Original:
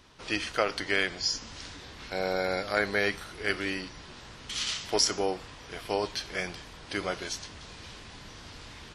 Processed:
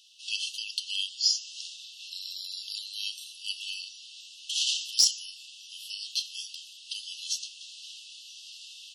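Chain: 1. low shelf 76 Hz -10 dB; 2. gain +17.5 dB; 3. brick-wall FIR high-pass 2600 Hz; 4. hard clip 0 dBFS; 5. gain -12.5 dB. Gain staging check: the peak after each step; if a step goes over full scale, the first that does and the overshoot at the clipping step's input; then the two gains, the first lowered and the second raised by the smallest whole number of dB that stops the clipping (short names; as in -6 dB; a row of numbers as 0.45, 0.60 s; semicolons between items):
-10.0, +7.5, +7.0, 0.0, -12.5 dBFS; step 2, 7.0 dB; step 2 +10.5 dB, step 5 -5.5 dB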